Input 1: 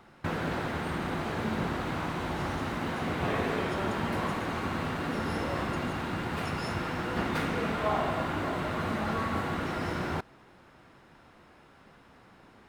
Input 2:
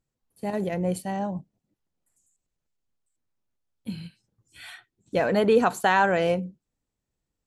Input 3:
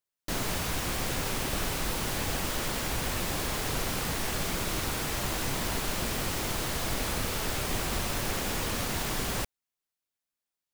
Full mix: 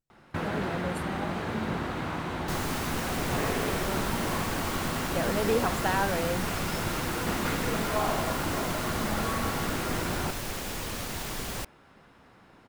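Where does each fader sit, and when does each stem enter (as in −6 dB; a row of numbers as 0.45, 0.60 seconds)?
0.0, −8.0, −3.5 decibels; 0.10, 0.00, 2.20 seconds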